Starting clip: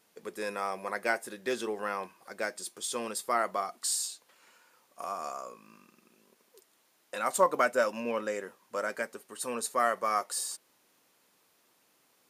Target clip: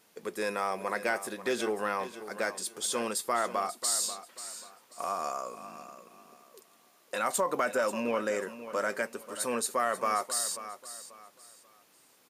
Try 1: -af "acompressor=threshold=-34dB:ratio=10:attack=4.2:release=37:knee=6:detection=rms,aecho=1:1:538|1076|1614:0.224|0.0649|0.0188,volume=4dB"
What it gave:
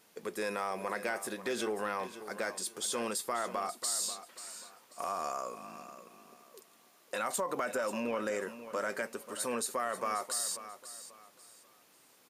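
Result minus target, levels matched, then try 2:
compressor: peak gain reduction +6 dB
-af "acompressor=threshold=-27.5dB:ratio=10:attack=4.2:release=37:knee=6:detection=rms,aecho=1:1:538|1076|1614:0.224|0.0649|0.0188,volume=4dB"

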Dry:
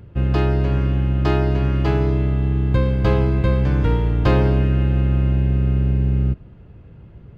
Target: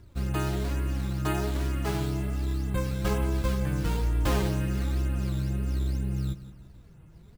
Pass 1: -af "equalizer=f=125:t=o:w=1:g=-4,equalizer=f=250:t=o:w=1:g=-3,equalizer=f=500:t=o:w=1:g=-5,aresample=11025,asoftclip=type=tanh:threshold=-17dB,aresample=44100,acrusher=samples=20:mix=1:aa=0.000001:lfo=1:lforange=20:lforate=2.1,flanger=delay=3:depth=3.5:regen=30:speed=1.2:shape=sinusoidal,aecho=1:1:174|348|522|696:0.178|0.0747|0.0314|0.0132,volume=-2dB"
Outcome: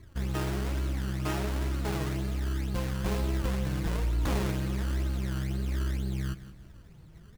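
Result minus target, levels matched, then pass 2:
soft clip: distortion +19 dB; decimation with a swept rate: distortion +6 dB
-af "equalizer=f=125:t=o:w=1:g=-4,equalizer=f=250:t=o:w=1:g=-3,equalizer=f=500:t=o:w=1:g=-5,aresample=11025,asoftclip=type=tanh:threshold=-5dB,aresample=44100,acrusher=samples=8:mix=1:aa=0.000001:lfo=1:lforange=8:lforate=2.1,flanger=delay=3:depth=3.5:regen=30:speed=1.2:shape=sinusoidal,aecho=1:1:174|348|522|696:0.178|0.0747|0.0314|0.0132,volume=-2dB"

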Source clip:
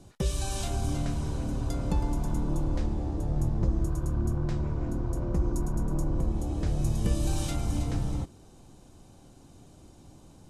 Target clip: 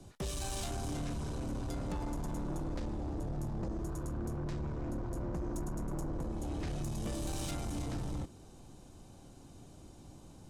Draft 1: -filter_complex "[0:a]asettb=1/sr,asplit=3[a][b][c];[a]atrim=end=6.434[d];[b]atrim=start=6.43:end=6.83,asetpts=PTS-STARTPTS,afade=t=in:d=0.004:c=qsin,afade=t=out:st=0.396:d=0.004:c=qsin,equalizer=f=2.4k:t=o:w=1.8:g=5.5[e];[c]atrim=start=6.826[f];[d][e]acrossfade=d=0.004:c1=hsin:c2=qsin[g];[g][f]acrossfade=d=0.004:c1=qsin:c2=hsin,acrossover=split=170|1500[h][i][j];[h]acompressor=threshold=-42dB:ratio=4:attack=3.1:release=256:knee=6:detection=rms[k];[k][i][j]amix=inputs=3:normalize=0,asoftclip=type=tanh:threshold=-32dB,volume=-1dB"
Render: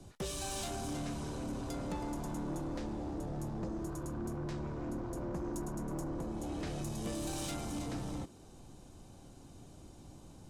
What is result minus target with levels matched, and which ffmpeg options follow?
compressor: peak gain reduction +8.5 dB
-filter_complex "[0:a]asettb=1/sr,asplit=3[a][b][c];[a]atrim=end=6.434[d];[b]atrim=start=6.43:end=6.83,asetpts=PTS-STARTPTS,afade=t=in:d=0.004:c=qsin,afade=t=out:st=0.396:d=0.004:c=qsin,equalizer=f=2.4k:t=o:w=1.8:g=5.5[e];[c]atrim=start=6.826[f];[d][e]acrossfade=d=0.004:c1=hsin:c2=qsin[g];[g][f]acrossfade=d=0.004:c1=qsin:c2=hsin,acrossover=split=170|1500[h][i][j];[h]acompressor=threshold=-30.5dB:ratio=4:attack=3.1:release=256:knee=6:detection=rms[k];[k][i][j]amix=inputs=3:normalize=0,asoftclip=type=tanh:threshold=-32dB,volume=-1dB"

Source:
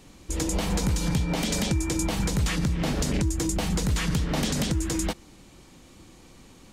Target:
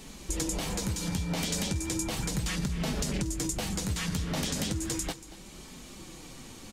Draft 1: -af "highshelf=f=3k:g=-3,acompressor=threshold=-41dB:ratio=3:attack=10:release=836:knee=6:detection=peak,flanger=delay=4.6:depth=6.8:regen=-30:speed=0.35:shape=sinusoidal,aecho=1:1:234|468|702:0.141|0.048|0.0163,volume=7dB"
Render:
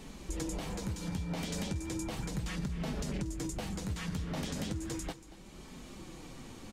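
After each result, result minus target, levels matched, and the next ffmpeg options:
compressor: peak gain reduction +5 dB; 8000 Hz band -4.5 dB
-af "highshelf=f=3k:g=-3,acompressor=threshold=-33.5dB:ratio=3:attack=10:release=836:knee=6:detection=peak,flanger=delay=4.6:depth=6.8:regen=-30:speed=0.35:shape=sinusoidal,aecho=1:1:234|468|702:0.141|0.048|0.0163,volume=7dB"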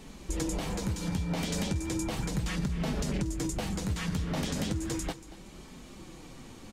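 8000 Hz band -5.0 dB
-af "highshelf=f=3k:g=5.5,acompressor=threshold=-33.5dB:ratio=3:attack=10:release=836:knee=6:detection=peak,flanger=delay=4.6:depth=6.8:regen=-30:speed=0.35:shape=sinusoidal,aecho=1:1:234|468|702:0.141|0.048|0.0163,volume=7dB"

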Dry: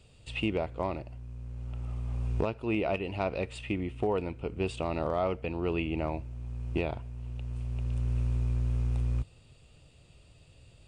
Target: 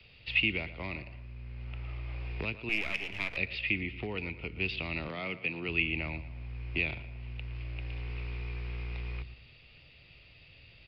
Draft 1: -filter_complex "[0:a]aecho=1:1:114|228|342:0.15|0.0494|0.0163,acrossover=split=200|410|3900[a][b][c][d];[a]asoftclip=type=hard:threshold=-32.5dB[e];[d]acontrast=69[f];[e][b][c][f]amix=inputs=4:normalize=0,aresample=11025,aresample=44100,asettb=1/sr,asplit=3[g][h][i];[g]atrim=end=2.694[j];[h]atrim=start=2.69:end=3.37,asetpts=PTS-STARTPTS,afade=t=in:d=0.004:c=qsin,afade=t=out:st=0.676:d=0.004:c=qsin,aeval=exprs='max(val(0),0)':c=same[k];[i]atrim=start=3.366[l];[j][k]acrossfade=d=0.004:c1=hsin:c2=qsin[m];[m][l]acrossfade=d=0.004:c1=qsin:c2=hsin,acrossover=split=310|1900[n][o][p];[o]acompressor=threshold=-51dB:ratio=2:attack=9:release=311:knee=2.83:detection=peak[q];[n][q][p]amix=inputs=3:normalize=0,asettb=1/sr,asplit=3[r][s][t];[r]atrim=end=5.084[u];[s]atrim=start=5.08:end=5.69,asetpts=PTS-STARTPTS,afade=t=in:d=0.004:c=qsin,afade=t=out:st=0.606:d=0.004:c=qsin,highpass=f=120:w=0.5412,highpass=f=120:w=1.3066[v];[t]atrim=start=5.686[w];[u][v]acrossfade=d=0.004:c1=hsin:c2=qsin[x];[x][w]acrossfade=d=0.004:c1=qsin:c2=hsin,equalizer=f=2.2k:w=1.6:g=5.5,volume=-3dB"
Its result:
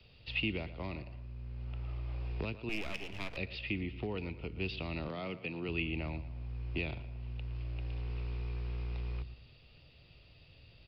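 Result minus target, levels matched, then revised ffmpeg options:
2000 Hz band -4.0 dB
-filter_complex "[0:a]aecho=1:1:114|228|342:0.15|0.0494|0.0163,acrossover=split=200|410|3900[a][b][c][d];[a]asoftclip=type=hard:threshold=-32.5dB[e];[d]acontrast=69[f];[e][b][c][f]amix=inputs=4:normalize=0,aresample=11025,aresample=44100,asettb=1/sr,asplit=3[g][h][i];[g]atrim=end=2.694[j];[h]atrim=start=2.69:end=3.37,asetpts=PTS-STARTPTS,afade=t=in:d=0.004:c=qsin,afade=t=out:st=0.676:d=0.004:c=qsin,aeval=exprs='max(val(0),0)':c=same[k];[i]atrim=start=3.366[l];[j][k]acrossfade=d=0.004:c1=hsin:c2=qsin[m];[m][l]acrossfade=d=0.004:c1=qsin:c2=hsin,acrossover=split=310|1900[n][o][p];[o]acompressor=threshold=-51dB:ratio=2:attack=9:release=311:knee=2.83:detection=peak[q];[n][q][p]amix=inputs=3:normalize=0,asettb=1/sr,asplit=3[r][s][t];[r]atrim=end=5.084[u];[s]atrim=start=5.08:end=5.69,asetpts=PTS-STARTPTS,afade=t=in:d=0.004:c=qsin,afade=t=out:st=0.606:d=0.004:c=qsin,highpass=f=120:w=0.5412,highpass=f=120:w=1.3066[v];[t]atrim=start=5.686[w];[u][v]acrossfade=d=0.004:c1=hsin:c2=qsin[x];[x][w]acrossfade=d=0.004:c1=qsin:c2=hsin,equalizer=f=2.2k:w=1.6:g=17,volume=-3dB"

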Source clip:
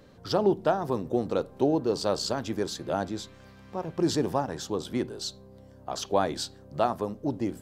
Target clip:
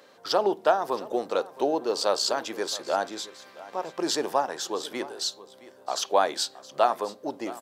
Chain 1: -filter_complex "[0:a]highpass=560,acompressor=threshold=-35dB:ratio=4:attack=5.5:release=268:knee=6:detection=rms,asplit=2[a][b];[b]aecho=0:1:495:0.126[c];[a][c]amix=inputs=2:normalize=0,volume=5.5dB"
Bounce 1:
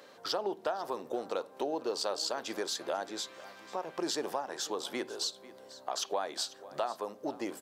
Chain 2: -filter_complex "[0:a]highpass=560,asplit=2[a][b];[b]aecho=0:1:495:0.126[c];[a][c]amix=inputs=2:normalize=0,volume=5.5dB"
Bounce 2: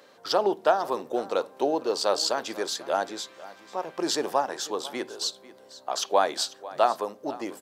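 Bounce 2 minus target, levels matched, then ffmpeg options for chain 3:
echo 0.174 s early
-filter_complex "[0:a]highpass=560,asplit=2[a][b];[b]aecho=0:1:669:0.126[c];[a][c]amix=inputs=2:normalize=0,volume=5.5dB"

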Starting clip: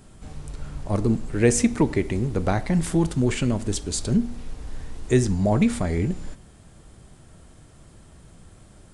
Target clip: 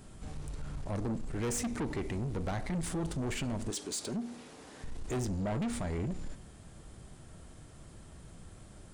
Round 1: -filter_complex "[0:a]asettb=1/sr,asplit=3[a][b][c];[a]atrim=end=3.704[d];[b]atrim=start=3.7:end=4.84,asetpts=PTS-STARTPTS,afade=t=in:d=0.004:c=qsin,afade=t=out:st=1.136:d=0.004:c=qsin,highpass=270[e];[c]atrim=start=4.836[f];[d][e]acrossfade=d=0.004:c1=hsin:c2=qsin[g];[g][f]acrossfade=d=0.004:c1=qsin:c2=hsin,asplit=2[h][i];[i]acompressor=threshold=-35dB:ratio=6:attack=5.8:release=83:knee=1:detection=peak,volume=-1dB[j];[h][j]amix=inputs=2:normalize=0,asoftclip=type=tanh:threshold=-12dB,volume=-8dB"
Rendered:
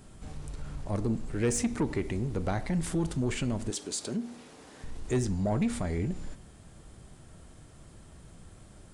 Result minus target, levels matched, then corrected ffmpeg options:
soft clip: distortion -10 dB
-filter_complex "[0:a]asettb=1/sr,asplit=3[a][b][c];[a]atrim=end=3.704[d];[b]atrim=start=3.7:end=4.84,asetpts=PTS-STARTPTS,afade=t=in:d=0.004:c=qsin,afade=t=out:st=1.136:d=0.004:c=qsin,highpass=270[e];[c]atrim=start=4.836[f];[d][e]acrossfade=d=0.004:c1=hsin:c2=qsin[g];[g][f]acrossfade=d=0.004:c1=qsin:c2=hsin,asplit=2[h][i];[i]acompressor=threshold=-35dB:ratio=6:attack=5.8:release=83:knee=1:detection=peak,volume=-1dB[j];[h][j]amix=inputs=2:normalize=0,asoftclip=type=tanh:threshold=-22.5dB,volume=-8dB"

